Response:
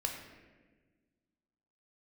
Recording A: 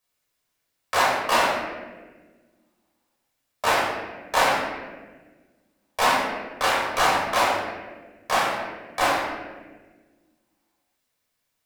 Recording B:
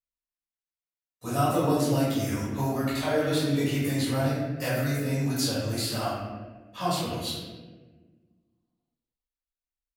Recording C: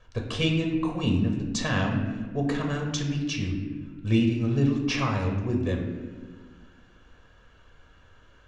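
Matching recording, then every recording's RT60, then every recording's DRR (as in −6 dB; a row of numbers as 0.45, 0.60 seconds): C; 1.4, 1.4, 1.4 seconds; −5.0, −11.0, 1.5 decibels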